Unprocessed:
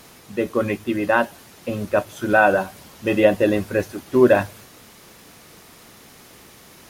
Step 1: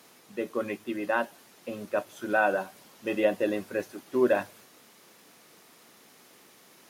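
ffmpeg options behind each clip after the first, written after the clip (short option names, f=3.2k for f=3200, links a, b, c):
-af "highpass=210,volume=-9dB"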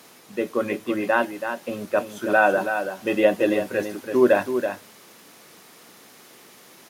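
-af "aecho=1:1:329:0.398,volume=6.5dB"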